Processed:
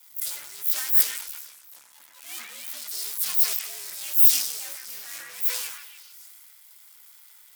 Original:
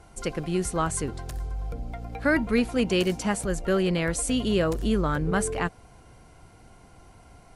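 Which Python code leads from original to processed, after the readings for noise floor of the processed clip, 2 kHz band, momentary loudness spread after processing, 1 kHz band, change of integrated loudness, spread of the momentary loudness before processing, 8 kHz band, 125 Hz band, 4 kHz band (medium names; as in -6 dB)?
-53 dBFS, -8.5 dB, 21 LU, -15.5 dB, +5.5 dB, 11 LU, +4.5 dB, under -40 dB, +2.0 dB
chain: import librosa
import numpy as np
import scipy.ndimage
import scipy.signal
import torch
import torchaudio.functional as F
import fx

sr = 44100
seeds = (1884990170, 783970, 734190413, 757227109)

p1 = fx.partial_stretch(x, sr, pct=122)
p2 = fx.fuzz(p1, sr, gain_db=51.0, gate_db=-57.0)
p3 = p1 + (p2 * librosa.db_to_amplitude(-9.0))
p4 = fx.highpass(p3, sr, hz=440.0, slope=6)
p5 = np.diff(p4, prepend=0.0)
p6 = p5 + fx.echo_stepped(p5, sr, ms=149, hz=1600.0, octaves=0.7, feedback_pct=70, wet_db=-0.5, dry=0)
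p7 = fx.transient(p6, sr, attack_db=-7, sustain_db=6)
p8 = fx.high_shelf(p7, sr, hz=4500.0, db=10.5)
p9 = fx.band_widen(p8, sr, depth_pct=70)
y = p9 * librosa.db_to_amplitude(-8.5)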